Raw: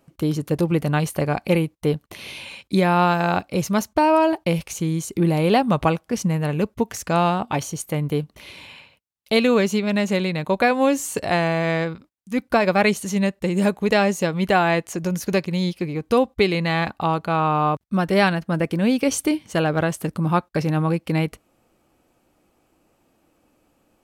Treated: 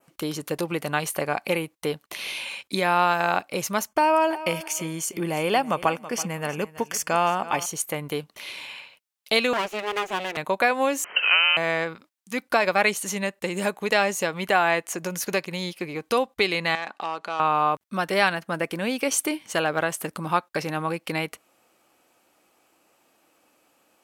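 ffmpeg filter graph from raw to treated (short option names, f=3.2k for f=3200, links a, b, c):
-filter_complex "[0:a]asettb=1/sr,asplit=3[a][b][c];[a]atrim=end=3.874[d];[b]atrim=start=3.87:end=7.66,asetpts=PTS-STARTPTS,afade=t=in:d=0.004:c=qsin,afade=t=out:st=3.786:d=0.004:c=qsin,asuperstop=centerf=3900:order=12:qfactor=6.9,aecho=1:1:328|656:0.141|0.0367,atrim=end_sample=167139[e];[c]atrim=start=7.656[f];[d][e]acrossfade=d=0.004:c1=hsin:c2=qsin[g];[g][f]acrossfade=d=0.004:c1=qsin:c2=hsin,asettb=1/sr,asplit=3[h][i][j];[h]atrim=end=9.534[k];[i]atrim=start=9.53:end=10.37,asetpts=PTS-STARTPTS,afade=t=in:d=0.004:c=qsin,afade=t=out:st=0.836:d=0.004:c=qsin,acrossover=split=3000[l][m];[m]acompressor=threshold=-49dB:ratio=4:attack=1:release=60[n];[l][n]amix=inputs=2:normalize=0,aecho=1:1:3.3:0.34,atrim=end_sample=37044,aeval=exprs='abs(val(0))':c=same[o];[j]atrim=start=10.366[p];[k][o]acrossfade=d=0.004:c1=hsin:c2=qsin[q];[q][p]acrossfade=d=0.004:c1=qsin:c2=hsin,asettb=1/sr,asplit=3[r][s][t];[r]atrim=end=11.044[u];[s]atrim=start=11.04:end=11.57,asetpts=PTS-STARTPTS,afade=t=in:d=0.004:c=qsin,afade=t=out:st=0.526:d=0.004:c=qsin,aeval=exprs='val(0)+0.5*0.0501*sgn(val(0))':c=same,lowpass=f=2.7k:t=q:w=0.5098,lowpass=f=2.7k:t=q:w=0.6013,lowpass=f=2.7k:t=q:w=0.9,lowpass=f=2.7k:t=q:w=2.563,afreqshift=-3200[v];[t]atrim=start=11.566[w];[u][v]acrossfade=d=0.004:c1=hsin:c2=qsin[x];[x][w]acrossfade=d=0.004:c1=qsin:c2=hsin,asettb=1/sr,asplit=3[y][z][aa];[y]atrim=end=16.754[ab];[z]atrim=start=16.75:end=17.4,asetpts=PTS-STARTPTS,afade=t=in:d=0.004:c=qsin,afade=t=out:st=0.646:d=0.004:c=qsin,acompressor=threshold=-32dB:ratio=2:attack=3.2:release=140:knee=1:detection=peak,volume=23.5dB,asoftclip=hard,volume=-23.5dB,highpass=240,lowpass=7.4k[ac];[aa]atrim=start=17.396[ad];[ab][ac]acrossfade=d=0.004:c1=hsin:c2=qsin[ae];[ae][ad]acrossfade=d=0.004:c1=qsin:c2=hsin,acompressor=threshold=-23dB:ratio=1.5,highpass=f=990:p=1,adynamicequalizer=threshold=0.00447:dfrequency=4400:dqfactor=1.1:tfrequency=4400:tqfactor=1.1:attack=5:release=100:ratio=0.375:range=3:mode=cutabove:tftype=bell,volume=5.5dB"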